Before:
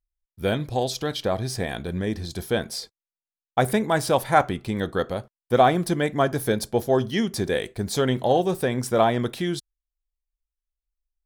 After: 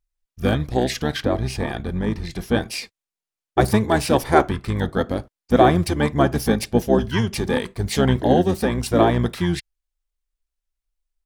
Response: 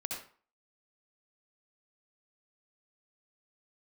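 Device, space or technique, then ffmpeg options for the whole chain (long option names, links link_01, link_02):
octave pedal: -filter_complex "[0:a]asettb=1/sr,asplit=3[link_01][link_02][link_03];[link_01]atrim=end=1.224[link_04];[link_02]atrim=start=1.22:end=2.55,asetpts=PTS-STARTPTS,afade=type=in:duration=0.004:curve=qsin,afade=type=out:start_time=1.326:duration=0.004:curve=qsin,highshelf=frequency=4800:gain=-6[link_05];[link_03]atrim=start=2.546[link_06];[link_04][link_05]acrossfade=duration=0.004:curve1=hsin:curve2=qsin[link_07];[link_07][link_06]acrossfade=duration=0.004:curve1=qsin:curve2=hsin,asplit=2[link_08][link_09];[link_09]asetrate=22050,aresample=44100,atempo=2,volume=-1dB[link_10];[link_08][link_10]amix=inputs=2:normalize=0,volume=1dB"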